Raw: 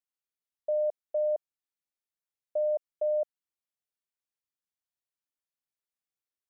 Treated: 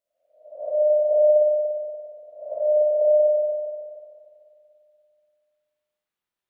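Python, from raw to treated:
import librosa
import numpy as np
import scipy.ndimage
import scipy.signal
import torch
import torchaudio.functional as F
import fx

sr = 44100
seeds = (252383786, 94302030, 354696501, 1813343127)

y = fx.spec_swells(x, sr, rise_s=0.64)
y = fx.rev_spring(y, sr, rt60_s=2.4, pass_ms=(48, 58), chirp_ms=25, drr_db=-8.5)
y = y * librosa.db_to_amplitude(-1.5)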